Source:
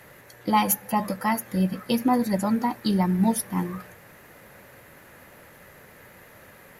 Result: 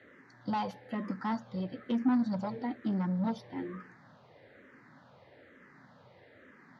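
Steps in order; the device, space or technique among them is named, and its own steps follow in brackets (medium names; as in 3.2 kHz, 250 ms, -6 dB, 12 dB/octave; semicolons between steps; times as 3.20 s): barber-pole phaser into a guitar amplifier (barber-pole phaser -1.1 Hz; saturation -23.5 dBFS, distortion -10 dB; cabinet simulation 110–4500 Hz, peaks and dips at 120 Hz +5 dB, 260 Hz +8 dB, 2.6 kHz -8 dB); trim -5 dB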